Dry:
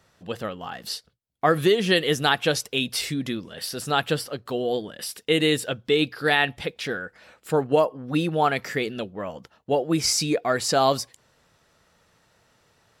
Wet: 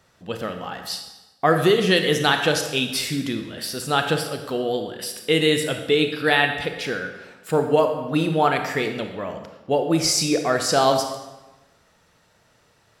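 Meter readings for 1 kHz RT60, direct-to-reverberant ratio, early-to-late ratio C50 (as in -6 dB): 1.1 s, 5.0 dB, 7.0 dB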